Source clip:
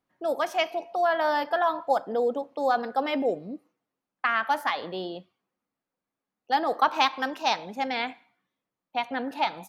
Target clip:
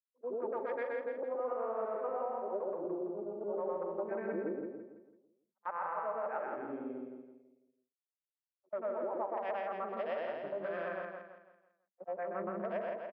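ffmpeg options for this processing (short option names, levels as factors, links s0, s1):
-filter_complex "[0:a]afftfilt=real='re':imag='-im':win_size=8192:overlap=0.75,lowpass=5700,afwtdn=0.00891,highpass=200,acrossover=split=310 2500:gain=0.158 1 0.112[s0][s1][s2];[s0][s1][s2]amix=inputs=3:normalize=0,acompressor=threshold=0.0158:ratio=4,agate=range=0.0562:threshold=0.00631:ratio=16:detection=peak,asetrate=32546,aresample=44100,aecho=1:1:166|332|498|664|830:0.596|0.232|0.0906|0.0353|0.0138"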